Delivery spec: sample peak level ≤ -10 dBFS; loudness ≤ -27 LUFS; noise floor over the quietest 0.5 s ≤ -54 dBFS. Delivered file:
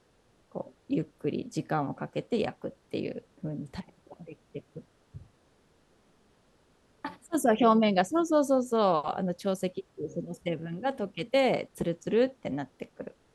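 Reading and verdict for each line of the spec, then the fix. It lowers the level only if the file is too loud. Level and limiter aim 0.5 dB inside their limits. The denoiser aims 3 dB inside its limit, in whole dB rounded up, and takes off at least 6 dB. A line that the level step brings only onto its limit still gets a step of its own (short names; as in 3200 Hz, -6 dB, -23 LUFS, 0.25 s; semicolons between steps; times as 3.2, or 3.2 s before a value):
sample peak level -11.5 dBFS: OK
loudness -29.5 LUFS: OK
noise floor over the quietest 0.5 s -66 dBFS: OK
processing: none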